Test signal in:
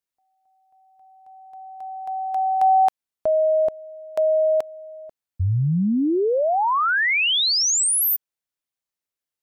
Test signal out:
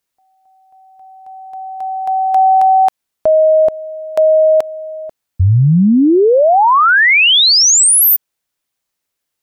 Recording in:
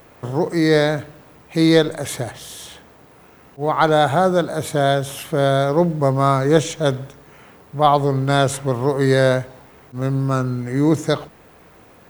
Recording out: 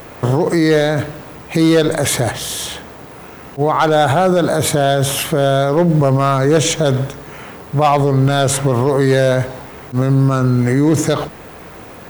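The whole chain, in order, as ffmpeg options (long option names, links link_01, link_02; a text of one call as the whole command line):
ffmpeg -i in.wav -af "asoftclip=type=hard:threshold=-9dB,alimiter=level_in=17.5dB:limit=-1dB:release=50:level=0:latency=1,volume=-5dB" out.wav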